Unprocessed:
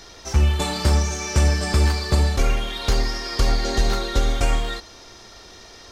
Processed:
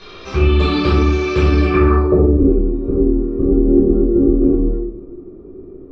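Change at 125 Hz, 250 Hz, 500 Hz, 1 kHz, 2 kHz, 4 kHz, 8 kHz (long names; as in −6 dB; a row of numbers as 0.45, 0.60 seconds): +3.5 dB, +16.0 dB, +13.0 dB, +3.0 dB, +2.0 dB, can't be measured, below −15 dB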